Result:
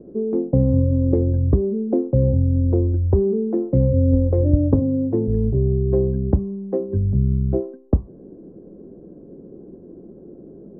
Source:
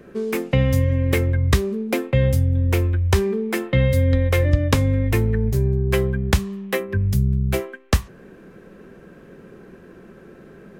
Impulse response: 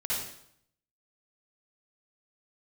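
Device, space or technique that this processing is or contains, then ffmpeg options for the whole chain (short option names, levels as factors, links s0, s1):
under water: -filter_complex "[0:a]lowpass=f=650:w=0.5412,lowpass=f=650:w=1.3066,equalizer=f=300:t=o:w=0.59:g=8,asplit=3[s0][s1][s2];[s0]afade=t=out:st=4.79:d=0.02[s3];[s1]highpass=f=130:w=0.5412,highpass=f=130:w=1.3066,afade=t=in:st=4.79:d=0.02,afade=t=out:st=5.27:d=0.02[s4];[s2]afade=t=in:st=5.27:d=0.02[s5];[s3][s4][s5]amix=inputs=3:normalize=0"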